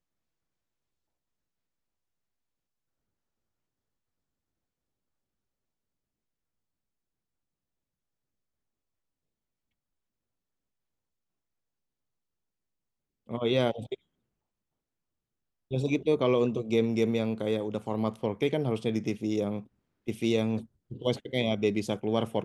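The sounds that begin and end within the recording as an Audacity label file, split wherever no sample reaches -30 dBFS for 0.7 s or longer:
13.310000	13.940000	sound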